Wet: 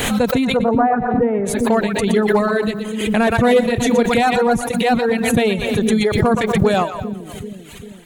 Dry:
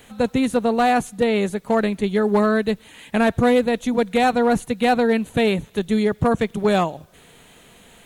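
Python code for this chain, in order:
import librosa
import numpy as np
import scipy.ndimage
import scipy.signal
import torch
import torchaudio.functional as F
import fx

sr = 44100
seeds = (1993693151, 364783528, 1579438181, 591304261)

p1 = fx.lowpass(x, sr, hz=1500.0, slope=24, at=(0.44, 1.45), fade=0.02)
p2 = fx.doubler(p1, sr, ms=30.0, db=-11.0, at=(3.45, 4.21))
p3 = fx.transient(p2, sr, attack_db=-9, sustain_db=6, at=(4.71, 5.13))
p4 = p3 + fx.echo_split(p3, sr, split_hz=400.0, low_ms=393, high_ms=121, feedback_pct=52, wet_db=-6.0, dry=0)
p5 = fx.dereverb_blind(p4, sr, rt60_s=1.2)
p6 = fx.pre_swell(p5, sr, db_per_s=37.0)
y = p6 * librosa.db_to_amplitude(2.5)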